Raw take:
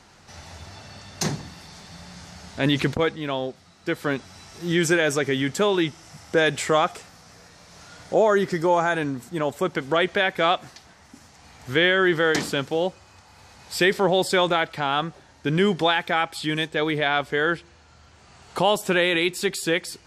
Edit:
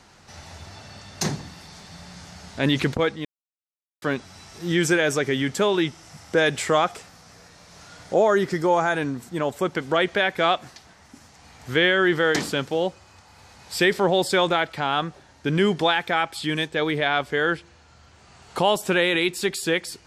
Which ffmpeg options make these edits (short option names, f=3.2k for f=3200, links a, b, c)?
-filter_complex "[0:a]asplit=3[a][b][c];[a]atrim=end=3.25,asetpts=PTS-STARTPTS,afade=t=out:st=3.246:d=0.004:c=hsin[d];[b]atrim=start=3.25:end=4.02,asetpts=PTS-STARTPTS,volume=0[e];[c]atrim=start=4.02,asetpts=PTS-STARTPTS,afade=t=in:d=0.004:c=hsin[f];[d][e][f]concat=n=3:v=0:a=1"